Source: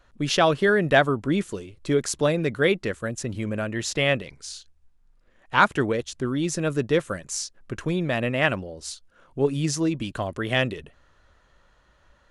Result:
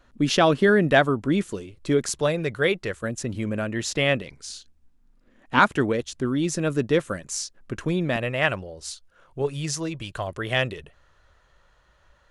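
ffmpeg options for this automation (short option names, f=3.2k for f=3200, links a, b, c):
-af "asetnsamples=n=441:p=0,asendcmd='0.91 equalizer g 2;2.09 equalizer g -7.5;3.03 equalizer g 2;4.5 equalizer g 13.5;5.59 equalizer g 2.5;8.16 equalizer g -8;9.42 equalizer g -14.5;10.27 equalizer g -7',equalizer=f=250:t=o:w=0.78:g=8"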